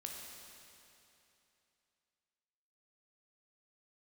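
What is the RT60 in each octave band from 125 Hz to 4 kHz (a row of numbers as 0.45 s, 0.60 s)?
2.9 s, 2.9 s, 2.9 s, 2.9 s, 2.9 s, 2.8 s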